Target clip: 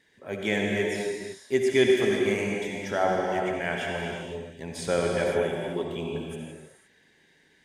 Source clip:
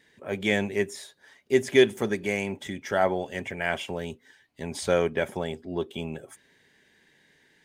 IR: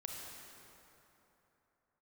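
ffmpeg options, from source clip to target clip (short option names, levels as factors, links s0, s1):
-filter_complex "[1:a]atrim=start_sample=2205,afade=t=out:st=0.35:d=0.01,atrim=end_sample=15876,asetrate=25578,aresample=44100[s0];[0:a][s0]afir=irnorm=-1:irlink=0,volume=0.891"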